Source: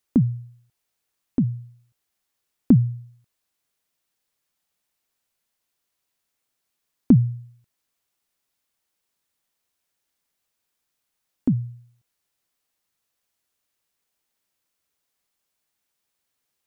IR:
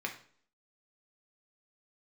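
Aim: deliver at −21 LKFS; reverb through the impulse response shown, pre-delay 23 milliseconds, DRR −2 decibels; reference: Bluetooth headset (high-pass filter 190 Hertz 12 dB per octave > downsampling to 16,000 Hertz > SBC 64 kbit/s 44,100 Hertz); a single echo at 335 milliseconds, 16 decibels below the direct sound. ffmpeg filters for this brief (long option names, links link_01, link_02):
-filter_complex "[0:a]aecho=1:1:335:0.158,asplit=2[link_01][link_02];[1:a]atrim=start_sample=2205,adelay=23[link_03];[link_02][link_03]afir=irnorm=-1:irlink=0,volume=-1.5dB[link_04];[link_01][link_04]amix=inputs=2:normalize=0,highpass=190,aresample=16000,aresample=44100,volume=2dB" -ar 44100 -c:a sbc -b:a 64k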